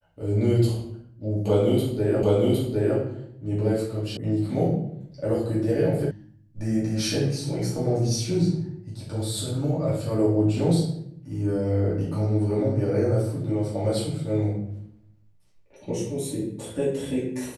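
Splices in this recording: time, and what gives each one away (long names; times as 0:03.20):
0:02.23: the same again, the last 0.76 s
0:04.17: cut off before it has died away
0:06.11: cut off before it has died away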